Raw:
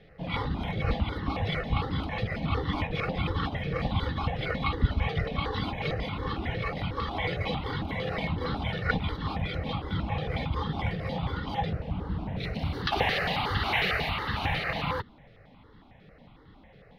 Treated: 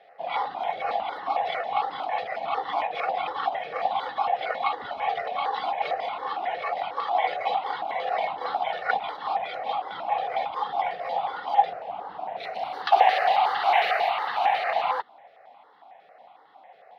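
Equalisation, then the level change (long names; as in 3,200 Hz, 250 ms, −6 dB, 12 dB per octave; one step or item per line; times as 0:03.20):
high-pass with resonance 730 Hz, resonance Q 6.2
high-shelf EQ 5,500 Hz −6 dB
0.0 dB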